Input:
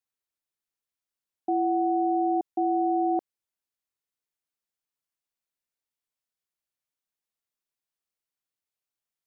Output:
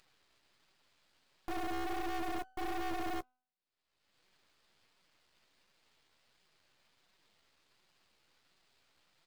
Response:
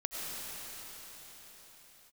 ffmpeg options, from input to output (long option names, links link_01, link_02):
-af "flanger=delay=5.2:depth=9.9:regen=12:speed=1.4:shape=sinusoidal,acompressor=mode=upward:threshold=-37dB:ratio=2.5,aresample=11025,asoftclip=type=hard:threshold=-30dB,aresample=44100,acrusher=bits=3:mode=log:mix=0:aa=0.000001,bandreject=frequency=252:width_type=h:width=4,bandreject=frequency=504:width_type=h:width=4,bandreject=frequency=756:width_type=h:width=4,aeval=exprs='max(val(0),0)':channel_layout=same,volume=-1dB"